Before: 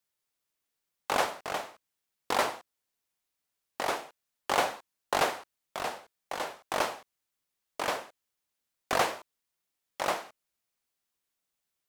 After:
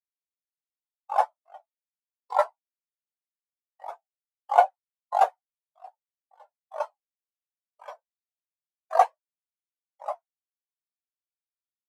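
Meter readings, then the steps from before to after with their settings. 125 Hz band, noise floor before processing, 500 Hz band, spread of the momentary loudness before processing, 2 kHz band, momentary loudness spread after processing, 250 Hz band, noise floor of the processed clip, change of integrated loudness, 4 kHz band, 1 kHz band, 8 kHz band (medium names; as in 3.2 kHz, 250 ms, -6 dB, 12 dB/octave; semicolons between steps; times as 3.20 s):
under -40 dB, -85 dBFS, +3.0 dB, 18 LU, -7.0 dB, 21 LU, under -30 dB, under -85 dBFS, +5.5 dB, under -10 dB, +6.5 dB, under -10 dB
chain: RIAA curve recording; spectral contrast expander 4:1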